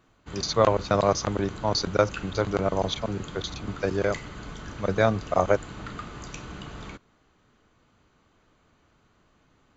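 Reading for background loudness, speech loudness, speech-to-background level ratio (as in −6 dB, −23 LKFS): −40.0 LKFS, −26.0 LKFS, 14.0 dB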